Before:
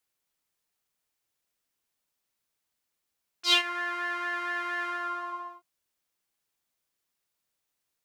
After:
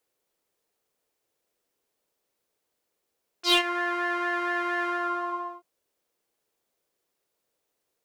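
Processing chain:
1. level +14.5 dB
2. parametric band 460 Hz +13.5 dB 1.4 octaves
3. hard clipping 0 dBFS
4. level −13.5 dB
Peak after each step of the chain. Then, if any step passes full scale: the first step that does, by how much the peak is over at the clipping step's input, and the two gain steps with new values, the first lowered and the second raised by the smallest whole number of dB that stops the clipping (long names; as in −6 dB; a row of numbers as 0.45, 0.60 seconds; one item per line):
+6.0, +7.0, 0.0, −13.5 dBFS
step 1, 7.0 dB
step 1 +7.5 dB, step 4 −6.5 dB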